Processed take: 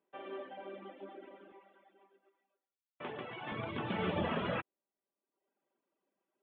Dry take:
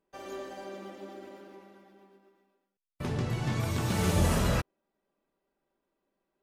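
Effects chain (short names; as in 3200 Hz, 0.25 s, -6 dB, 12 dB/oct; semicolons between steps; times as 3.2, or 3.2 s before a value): Chebyshev low-pass 3400 Hz, order 6; reverb removal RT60 0.84 s; HPF 210 Hz 12 dB/oct, from 1.52 s 430 Hz, from 3.52 s 200 Hz; gain -1.5 dB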